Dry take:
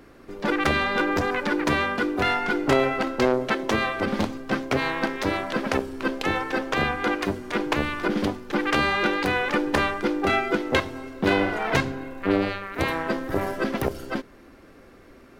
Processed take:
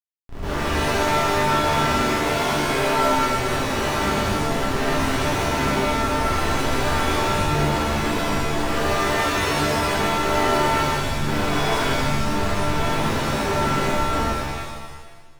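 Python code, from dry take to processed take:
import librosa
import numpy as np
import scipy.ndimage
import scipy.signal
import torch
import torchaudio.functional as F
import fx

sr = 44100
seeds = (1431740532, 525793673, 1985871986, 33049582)

y = fx.schmitt(x, sr, flips_db=-30.5)
y = fx.high_shelf(y, sr, hz=5700.0, db=-10.5)
y = fx.notch(y, sr, hz=520.0, q=14.0)
y = fx.rev_shimmer(y, sr, seeds[0], rt60_s=1.3, semitones=7, shimmer_db=-2, drr_db=-9.0)
y = y * 10.0 ** (-8.0 / 20.0)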